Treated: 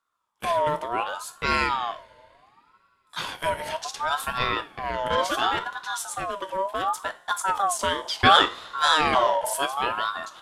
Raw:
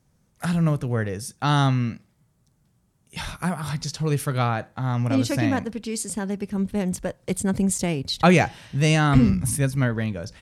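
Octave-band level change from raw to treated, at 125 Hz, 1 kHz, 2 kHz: -19.0 dB, +6.5 dB, +3.0 dB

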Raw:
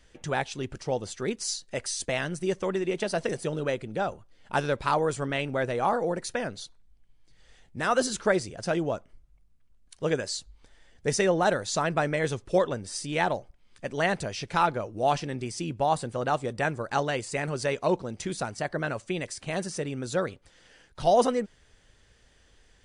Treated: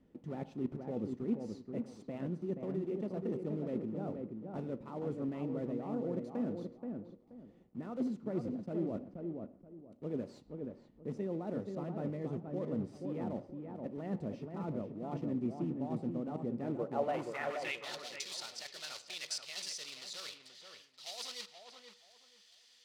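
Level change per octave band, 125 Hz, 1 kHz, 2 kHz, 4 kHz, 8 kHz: -8.5 dB, -18.0 dB, -17.5 dB, -9.0 dB, -14.0 dB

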